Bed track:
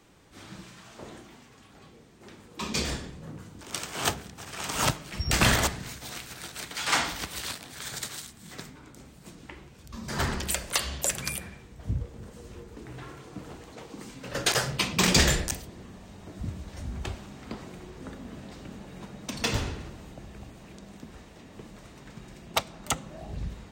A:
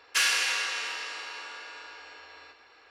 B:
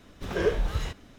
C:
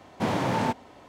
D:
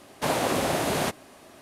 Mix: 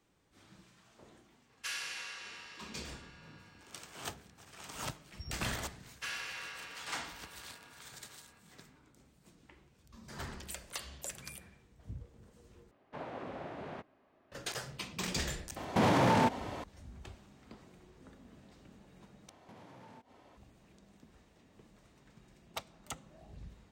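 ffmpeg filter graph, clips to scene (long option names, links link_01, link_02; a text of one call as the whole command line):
ffmpeg -i bed.wav -i cue0.wav -i cue1.wav -i cue2.wav -i cue3.wav -filter_complex "[1:a]asplit=2[link_01][link_02];[3:a]asplit=2[link_03][link_04];[0:a]volume=-15dB[link_05];[link_02]highshelf=frequency=3500:gain=-10.5[link_06];[4:a]lowpass=2100[link_07];[link_03]alimiter=level_in=26dB:limit=-1dB:release=50:level=0:latency=1[link_08];[link_04]acompressor=threshold=-43dB:ratio=6:attack=3.2:release=140:knee=1:detection=peak[link_09];[link_05]asplit=3[link_10][link_11][link_12];[link_10]atrim=end=12.714[link_13];[link_07]atrim=end=1.61,asetpts=PTS-STARTPTS,volume=-17.5dB[link_14];[link_11]atrim=start=14.316:end=19.294[link_15];[link_09]atrim=end=1.08,asetpts=PTS-STARTPTS,volume=-10dB[link_16];[link_12]atrim=start=20.366[link_17];[link_01]atrim=end=2.9,asetpts=PTS-STARTPTS,volume=-15dB,afade=type=in:duration=0.004:curve=hsin,afade=type=out:start_time=2.896:duration=0.004:curve=hsin,adelay=1490[link_18];[link_06]atrim=end=2.9,asetpts=PTS-STARTPTS,volume=-12dB,afade=type=in:duration=0.004:curve=hsin,afade=type=out:start_time=2.896:duration=0.004:curve=hsin,adelay=5870[link_19];[link_08]atrim=end=1.08,asetpts=PTS-STARTPTS,volume=-17.5dB,afade=type=in:duration=0.004:curve=hsin,afade=type=out:start_time=1.076:duration=0.004:curve=hsin,adelay=686196S[link_20];[link_13][link_14]acrossfade=duration=0.004:curve1=hsin:curve2=hsin[link_21];[link_21][link_15]acrossfade=duration=0.004:curve1=hsin:curve2=hsin[link_22];[link_22][link_16]acrossfade=duration=0.004:curve1=hsin:curve2=hsin[link_23];[link_23][link_17]acrossfade=duration=0.004:curve1=hsin:curve2=hsin[link_24];[link_24][link_18][link_19][link_20]amix=inputs=4:normalize=0" out.wav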